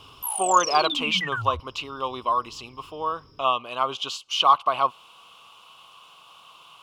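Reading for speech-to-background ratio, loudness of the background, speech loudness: 3.5 dB, −28.0 LKFS, −24.5 LKFS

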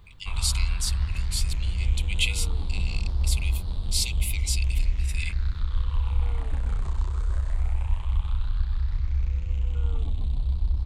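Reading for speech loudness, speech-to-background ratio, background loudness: −31.5 LKFS, −2.5 dB, −29.0 LKFS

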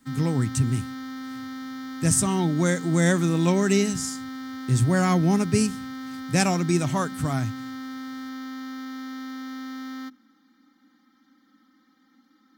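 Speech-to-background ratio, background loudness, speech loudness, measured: 12.5 dB, −36.0 LKFS, −23.5 LKFS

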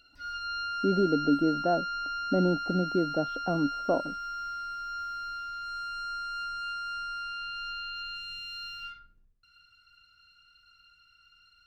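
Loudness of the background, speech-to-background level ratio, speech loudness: −34.5 LKFS, 5.5 dB, −29.0 LKFS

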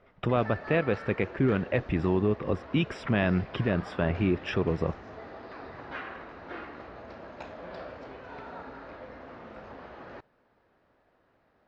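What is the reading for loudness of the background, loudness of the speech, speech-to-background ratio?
−43.5 LKFS, −28.5 LKFS, 15.0 dB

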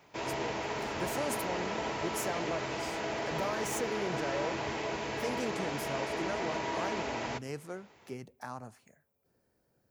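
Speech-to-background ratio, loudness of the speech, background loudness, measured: −4.5 dB, −40.0 LKFS, −35.5 LKFS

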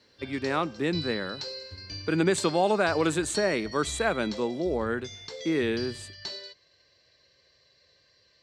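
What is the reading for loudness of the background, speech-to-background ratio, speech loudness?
−39.0 LKFS, 11.0 dB, −28.0 LKFS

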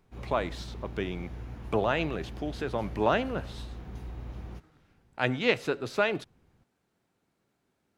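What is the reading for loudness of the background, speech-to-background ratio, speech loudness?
−43.0 LKFS, 12.5 dB, −30.5 LKFS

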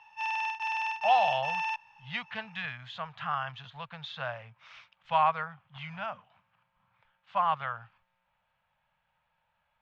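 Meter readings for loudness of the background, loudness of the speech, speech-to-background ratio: −32.0 LKFS, −32.0 LKFS, 0.0 dB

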